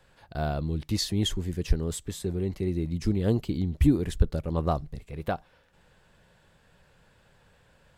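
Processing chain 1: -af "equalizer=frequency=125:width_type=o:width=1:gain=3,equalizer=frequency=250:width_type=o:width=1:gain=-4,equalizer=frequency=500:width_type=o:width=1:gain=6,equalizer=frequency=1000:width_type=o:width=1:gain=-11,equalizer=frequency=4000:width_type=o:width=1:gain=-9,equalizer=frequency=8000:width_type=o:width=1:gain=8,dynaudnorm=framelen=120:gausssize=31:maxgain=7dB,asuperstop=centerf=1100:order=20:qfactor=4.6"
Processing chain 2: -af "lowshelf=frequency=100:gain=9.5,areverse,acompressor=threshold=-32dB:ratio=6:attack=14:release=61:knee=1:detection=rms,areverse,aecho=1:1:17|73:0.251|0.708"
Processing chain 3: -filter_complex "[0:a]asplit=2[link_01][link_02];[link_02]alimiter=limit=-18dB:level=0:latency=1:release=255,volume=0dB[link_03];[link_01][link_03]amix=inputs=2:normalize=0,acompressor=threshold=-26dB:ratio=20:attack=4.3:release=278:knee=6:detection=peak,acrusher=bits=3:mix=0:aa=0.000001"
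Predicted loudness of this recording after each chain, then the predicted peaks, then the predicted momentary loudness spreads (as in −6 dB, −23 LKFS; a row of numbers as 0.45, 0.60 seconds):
−24.0, −34.0, −39.0 LKFS; −3.0, −19.5, −17.0 dBFS; 11, 5, 5 LU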